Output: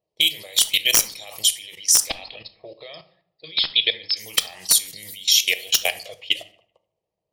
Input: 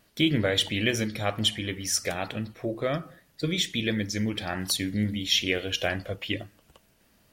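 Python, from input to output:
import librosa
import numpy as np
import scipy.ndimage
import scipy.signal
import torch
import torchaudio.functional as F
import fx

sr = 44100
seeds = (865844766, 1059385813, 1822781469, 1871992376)

y = fx.highpass(x, sr, hz=70.0, slope=6)
y = fx.notch(y, sr, hz=3500.0, q=23.0)
y = fx.env_lowpass(y, sr, base_hz=410.0, full_db=-25.0)
y = fx.high_shelf(y, sr, hz=2800.0, db=10.5)
y = fx.hpss(y, sr, part='harmonic', gain_db=-5)
y = fx.tilt_eq(y, sr, slope=4.5)
y = fx.level_steps(y, sr, step_db=22)
y = fx.fixed_phaser(y, sr, hz=620.0, stages=4)
y = (np.mod(10.0 ** (12.0 / 20.0) * y + 1.0, 2.0) - 1.0) / 10.0 ** (12.0 / 20.0)
y = fx.brickwall_lowpass(y, sr, high_hz=5300.0, at=(2.07, 4.17))
y = fx.echo_tape(y, sr, ms=73, feedback_pct=56, wet_db=-22, lp_hz=3100.0, drive_db=8.0, wow_cents=32)
y = fx.room_shoebox(y, sr, seeds[0], volume_m3=530.0, walls='furnished', distance_m=0.56)
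y = F.gain(torch.from_numpy(y), 8.5).numpy()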